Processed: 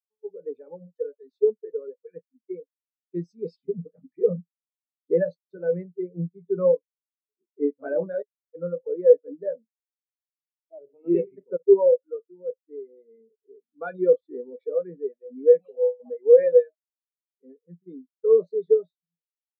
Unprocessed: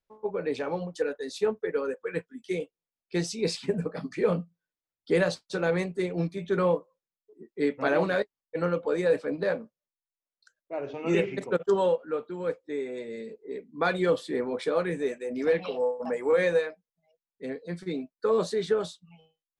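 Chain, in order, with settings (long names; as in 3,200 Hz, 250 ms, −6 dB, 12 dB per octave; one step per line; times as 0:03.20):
every bin expanded away from the loudest bin 2.5 to 1
level +8 dB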